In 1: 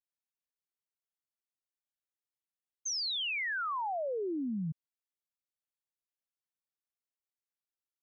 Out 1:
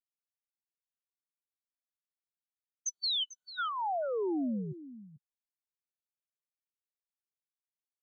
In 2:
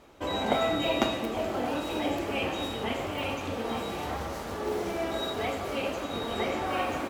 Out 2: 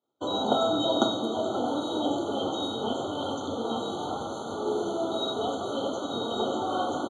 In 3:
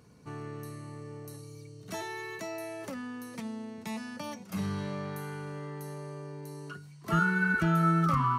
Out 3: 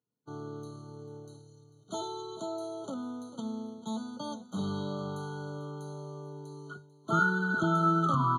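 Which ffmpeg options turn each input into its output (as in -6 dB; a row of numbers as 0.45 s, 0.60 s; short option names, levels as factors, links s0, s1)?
-af "agate=range=0.0224:threshold=0.0126:ratio=3:detection=peak,highpass=f=120:w=0.5412,highpass=f=120:w=1.3066,equalizer=f=170:t=q:w=4:g=-8,equalizer=f=560:t=q:w=4:g=-3,equalizer=f=1100:t=q:w=4:g=-6,lowpass=f=8400:w=0.5412,lowpass=f=8400:w=1.3066,aecho=1:1:444:0.168,afftfilt=real='re*eq(mod(floor(b*sr/1024/1500),2),0)':imag='im*eq(mod(floor(b*sr/1024/1500),2),0)':win_size=1024:overlap=0.75,volume=1.5"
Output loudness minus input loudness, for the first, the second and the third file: 0.0 LU, +1.5 LU, -0.5 LU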